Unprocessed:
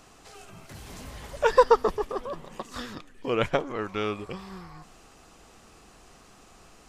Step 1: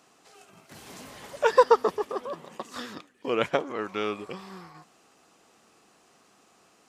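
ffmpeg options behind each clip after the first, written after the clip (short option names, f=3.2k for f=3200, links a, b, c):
-af "agate=range=-6dB:threshold=-45dB:ratio=16:detection=peak,highpass=190"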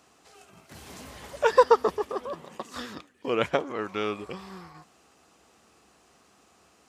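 -af "equalizer=f=67:w=2:g=15"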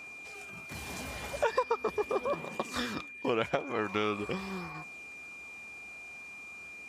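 -af "aphaser=in_gain=1:out_gain=1:delay=1.5:decay=0.2:speed=0.42:type=triangular,acompressor=threshold=-29dB:ratio=8,aeval=exprs='val(0)+0.00447*sin(2*PI*2400*n/s)':c=same,volume=3dB"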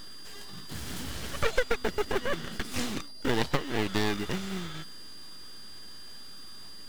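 -filter_complex "[0:a]acrossover=split=420[a][b];[a]acrusher=bits=3:mode=log:mix=0:aa=0.000001[c];[b]aeval=exprs='abs(val(0))':c=same[d];[c][d]amix=inputs=2:normalize=0,volume=5dB"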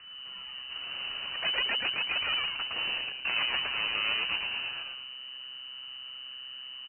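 -filter_complex "[0:a]aeval=exprs='0.112*(abs(mod(val(0)/0.112+3,4)-2)-1)':c=same,lowpass=f=2.6k:t=q:w=0.5098,lowpass=f=2.6k:t=q:w=0.6013,lowpass=f=2.6k:t=q:w=0.9,lowpass=f=2.6k:t=q:w=2.563,afreqshift=-3000,asplit=6[a][b][c][d][e][f];[b]adelay=111,afreqshift=-130,volume=-3dB[g];[c]adelay=222,afreqshift=-260,volume=-12.1dB[h];[d]adelay=333,afreqshift=-390,volume=-21.2dB[i];[e]adelay=444,afreqshift=-520,volume=-30.4dB[j];[f]adelay=555,afreqshift=-650,volume=-39.5dB[k];[a][g][h][i][j][k]amix=inputs=6:normalize=0,volume=-2.5dB"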